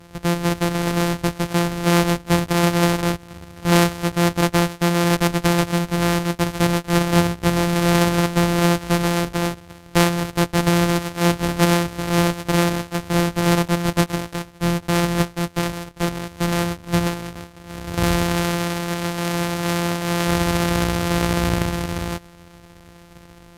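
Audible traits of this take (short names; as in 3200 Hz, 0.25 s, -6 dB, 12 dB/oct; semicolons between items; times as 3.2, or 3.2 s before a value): a buzz of ramps at a fixed pitch in blocks of 256 samples; AAC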